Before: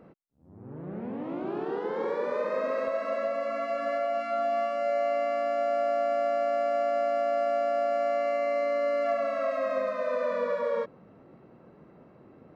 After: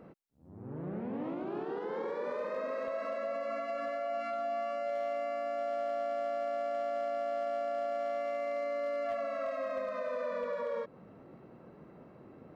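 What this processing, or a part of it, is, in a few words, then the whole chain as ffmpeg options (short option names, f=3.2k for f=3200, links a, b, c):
clipper into limiter: -af "asoftclip=type=hard:threshold=-21dB,alimiter=level_in=4.5dB:limit=-24dB:level=0:latency=1:release=165,volume=-4.5dB"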